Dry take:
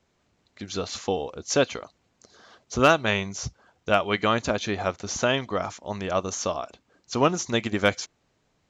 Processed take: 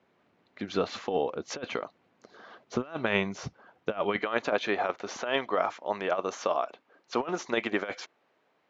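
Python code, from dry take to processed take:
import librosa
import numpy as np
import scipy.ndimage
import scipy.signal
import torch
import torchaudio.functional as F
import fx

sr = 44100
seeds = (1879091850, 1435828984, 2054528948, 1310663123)

y = fx.bandpass_edges(x, sr, low_hz=fx.steps((0.0, 190.0), (4.19, 400.0)), high_hz=2500.0)
y = fx.over_compress(y, sr, threshold_db=-27.0, ratio=-0.5)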